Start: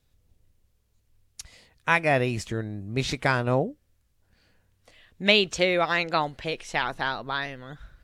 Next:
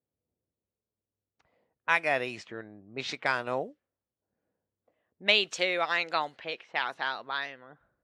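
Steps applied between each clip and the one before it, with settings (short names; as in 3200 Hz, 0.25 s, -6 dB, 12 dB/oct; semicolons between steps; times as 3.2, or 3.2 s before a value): weighting filter A; low-pass opened by the level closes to 480 Hz, open at -24 dBFS; gain -4 dB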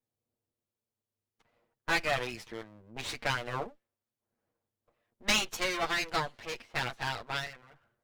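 minimum comb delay 8.6 ms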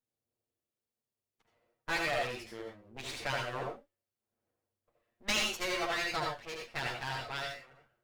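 reverb, pre-delay 71 ms, DRR 0.5 dB; gain -5 dB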